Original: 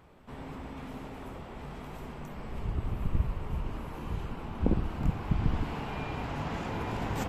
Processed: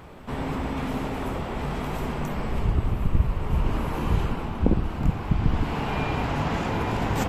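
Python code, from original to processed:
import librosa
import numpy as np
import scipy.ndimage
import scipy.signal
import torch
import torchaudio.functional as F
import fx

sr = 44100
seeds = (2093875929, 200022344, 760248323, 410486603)

y = fx.rider(x, sr, range_db=4, speed_s=0.5)
y = y * 10.0 ** (9.0 / 20.0)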